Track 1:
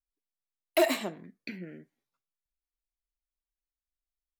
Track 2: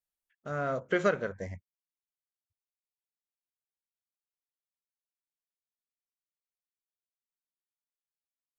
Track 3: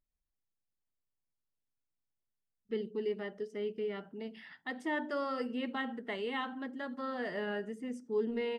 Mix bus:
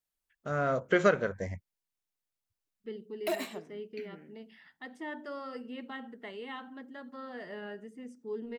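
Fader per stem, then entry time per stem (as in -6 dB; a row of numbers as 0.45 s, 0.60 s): -8.5 dB, +2.5 dB, -5.5 dB; 2.50 s, 0.00 s, 0.15 s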